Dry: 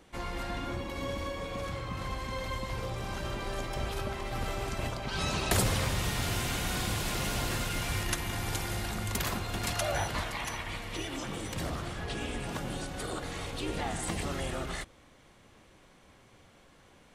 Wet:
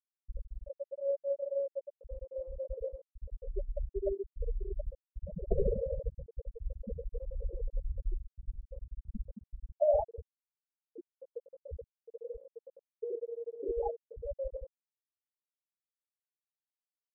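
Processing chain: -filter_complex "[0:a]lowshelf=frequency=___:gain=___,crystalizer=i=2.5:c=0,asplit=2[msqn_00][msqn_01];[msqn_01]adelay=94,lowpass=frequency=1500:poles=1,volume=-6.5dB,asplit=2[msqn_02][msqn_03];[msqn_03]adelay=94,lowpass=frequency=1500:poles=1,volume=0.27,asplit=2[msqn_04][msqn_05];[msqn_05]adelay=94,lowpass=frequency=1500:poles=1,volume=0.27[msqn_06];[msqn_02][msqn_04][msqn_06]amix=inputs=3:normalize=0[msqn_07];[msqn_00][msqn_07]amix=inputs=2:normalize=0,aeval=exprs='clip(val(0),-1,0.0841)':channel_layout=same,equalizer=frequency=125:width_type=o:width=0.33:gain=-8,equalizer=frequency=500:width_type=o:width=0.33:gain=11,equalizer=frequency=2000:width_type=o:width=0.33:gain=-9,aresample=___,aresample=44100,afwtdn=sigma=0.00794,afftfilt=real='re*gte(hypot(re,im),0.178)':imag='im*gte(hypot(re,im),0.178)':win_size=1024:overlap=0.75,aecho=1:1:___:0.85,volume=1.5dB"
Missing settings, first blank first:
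160, -2, 8000, 4.9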